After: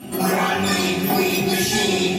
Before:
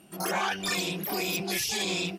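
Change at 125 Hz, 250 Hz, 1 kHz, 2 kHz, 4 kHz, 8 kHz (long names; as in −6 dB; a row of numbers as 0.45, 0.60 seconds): +13.0, +14.0, +10.0, +8.5, +7.5, +7.0 decibels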